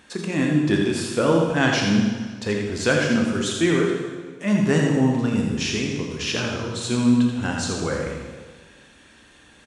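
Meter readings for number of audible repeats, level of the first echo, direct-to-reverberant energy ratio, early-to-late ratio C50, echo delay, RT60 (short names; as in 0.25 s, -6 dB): 1, -6.0 dB, -0.5 dB, 1.0 dB, 83 ms, 1.5 s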